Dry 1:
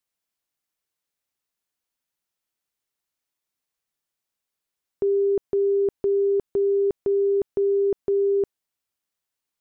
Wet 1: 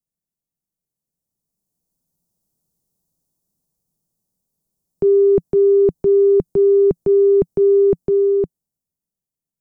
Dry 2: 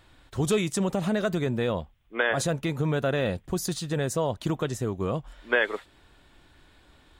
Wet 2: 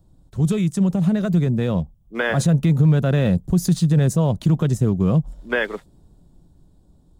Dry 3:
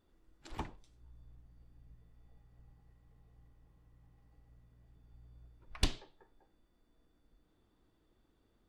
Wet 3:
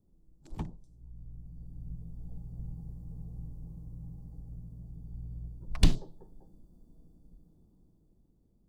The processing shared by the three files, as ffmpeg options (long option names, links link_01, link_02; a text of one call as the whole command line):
ffmpeg -i in.wav -filter_complex "[0:a]equalizer=frequency=170:width=1.6:gain=13,acrossover=split=280|870|5100[link_01][link_02][link_03][link_04];[link_03]aeval=exprs='sgn(val(0))*max(abs(val(0))-0.00266,0)':channel_layout=same[link_05];[link_01][link_02][link_05][link_04]amix=inputs=4:normalize=0,dynaudnorm=framelen=270:gausssize=13:maxgain=15.5dB,lowshelf=frequency=100:gain=10,alimiter=level_in=4dB:limit=-1dB:release=50:level=0:latency=1,volume=-8dB" out.wav